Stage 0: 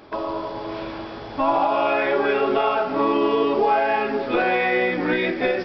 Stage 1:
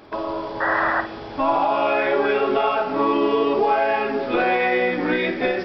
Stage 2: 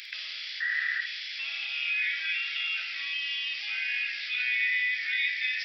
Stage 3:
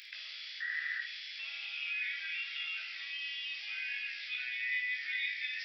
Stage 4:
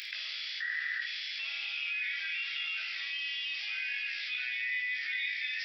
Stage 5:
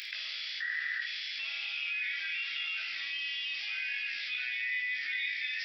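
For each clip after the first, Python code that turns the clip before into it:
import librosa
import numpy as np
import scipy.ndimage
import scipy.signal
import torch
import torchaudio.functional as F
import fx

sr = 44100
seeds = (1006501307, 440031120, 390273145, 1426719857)

y1 = fx.spec_paint(x, sr, seeds[0], shape='noise', start_s=0.6, length_s=0.41, low_hz=530.0, high_hz=2000.0, level_db=-21.0)
y1 = fx.room_flutter(y1, sr, wall_m=9.0, rt60_s=0.27)
y2 = scipy.signal.sosfilt(scipy.signal.ellip(4, 1.0, 50, 2000.0, 'highpass', fs=sr, output='sos'), y1)
y2 = fx.env_flatten(y2, sr, amount_pct=50)
y2 = y2 * librosa.db_to_amplitude(-1.0)
y3 = fx.doubler(y2, sr, ms=20.0, db=-7.0)
y3 = y3 * librosa.db_to_amplitude(-8.5)
y4 = fx.env_flatten(y3, sr, amount_pct=50)
y5 = fx.peak_eq(y4, sr, hz=250.0, db=3.5, octaves=1.8)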